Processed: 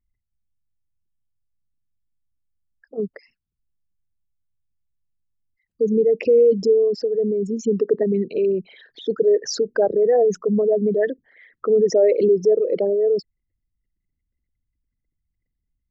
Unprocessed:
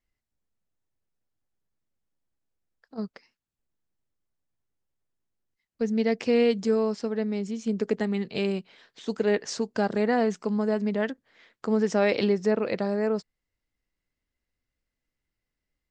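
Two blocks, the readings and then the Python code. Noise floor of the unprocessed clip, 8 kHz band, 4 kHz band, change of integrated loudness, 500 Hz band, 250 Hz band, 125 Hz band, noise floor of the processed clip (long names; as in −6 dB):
below −85 dBFS, +6.5 dB, +1.0 dB, +7.0 dB, +9.5 dB, +1.0 dB, can't be measured, −80 dBFS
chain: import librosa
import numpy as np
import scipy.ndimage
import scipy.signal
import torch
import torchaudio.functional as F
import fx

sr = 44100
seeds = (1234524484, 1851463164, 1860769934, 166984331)

y = fx.envelope_sharpen(x, sr, power=3.0)
y = y * librosa.db_to_amplitude(7.5)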